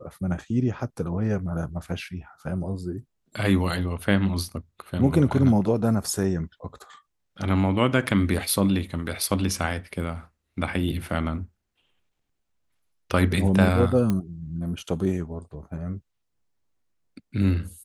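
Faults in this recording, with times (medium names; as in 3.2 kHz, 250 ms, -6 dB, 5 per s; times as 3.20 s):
14.10 s: pop -13 dBFS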